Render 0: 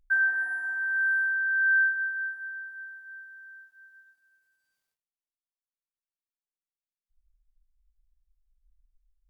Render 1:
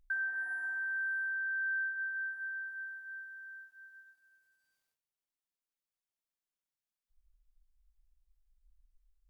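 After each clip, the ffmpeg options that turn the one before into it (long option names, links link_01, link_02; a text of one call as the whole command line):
ffmpeg -i in.wav -af "acompressor=threshold=-36dB:ratio=3,volume=-1dB" out.wav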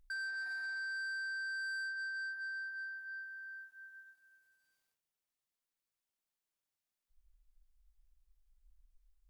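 ffmpeg -i in.wav -af "asoftclip=type=tanh:threshold=-39dB,volume=1dB" out.wav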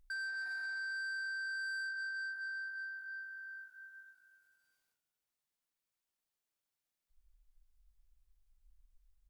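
ffmpeg -i in.wav -filter_complex "[0:a]asplit=4[link_01][link_02][link_03][link_04];[link_02]adelay=203,afreqshift=-49,volume=-18.5dB[link_05];[link_03]adelay=406,afreqshift=-98,volume=-26.9dB[link_06];[link_04]adelay=609,afreqshift=-147,volume=-35.3dB[link_07];[link_01][link_05][link_06][link_07]amix=inputs=4:normalize=0" out.wav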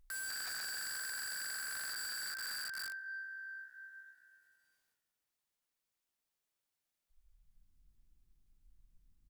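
ffmpeg -i in.wav -filter_complex "[0:a]asplit=6[link_01][link_02][link_03][link_04][link_05][link_06];[link_02]adelay=129,afreqshift=71,volume=-20.5dB[link_07];[link_03]adelay=258,afreqshift=142,volume=-25.1dB[link_08];[link_04]adelay=387,afreqshift=213,volume=-29.7dB[link_09];[link_05]adelay=516,afreqshift=284,volume=-34.2dB[link_10];[link_06]adelay=645,afreqshift=355,volume=-38.8dB[link_11];[link_01][link_07][link_08][link_09][link_10][link_11]amix=inputs=6:normalize=0,aeval=exprs='(mod(100*val(0)+1,2)-1)/100':channel_layout=same,volume=1dB" out.wav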